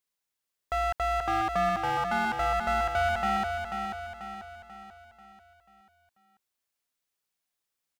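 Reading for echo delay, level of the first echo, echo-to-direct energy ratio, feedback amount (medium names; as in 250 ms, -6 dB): 489 ms, -6.0 dB, -5.0 dB, 47%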